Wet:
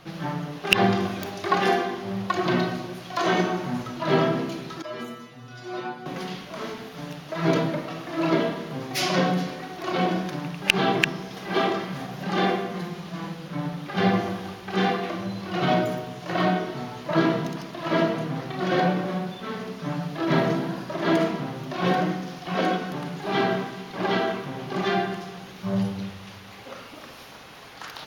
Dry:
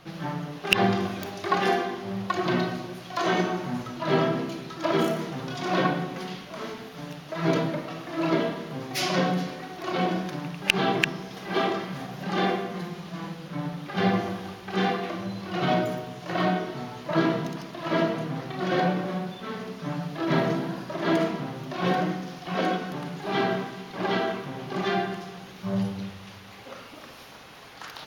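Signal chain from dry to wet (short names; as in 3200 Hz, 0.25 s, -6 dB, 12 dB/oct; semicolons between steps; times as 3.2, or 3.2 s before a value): 4.82–6.06 metallic resonator 120 Hz, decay 0.41 s, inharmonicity 0.002; gain +2 dB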